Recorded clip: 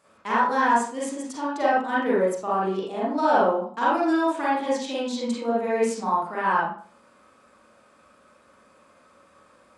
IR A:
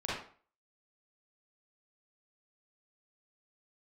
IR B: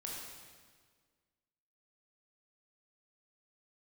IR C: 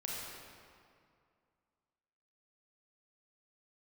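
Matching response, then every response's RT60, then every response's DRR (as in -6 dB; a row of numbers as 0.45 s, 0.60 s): A; 0.45 s, 1.7 s, 2.3 s; -8.0 dB, -3.5 dB, -4.5 dB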